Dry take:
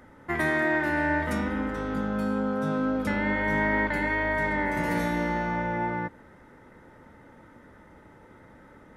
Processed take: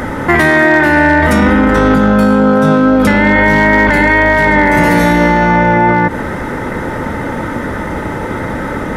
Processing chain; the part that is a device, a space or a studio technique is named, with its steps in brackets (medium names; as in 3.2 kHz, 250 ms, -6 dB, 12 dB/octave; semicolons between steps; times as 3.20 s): loud club master (compression 2:1, threshold -31 dBFS, peak gain reduction 6 dB; hard clipper -23.5 dBFS, distortion -27 dB; loudness maximiser +34 dB); trim -1 dB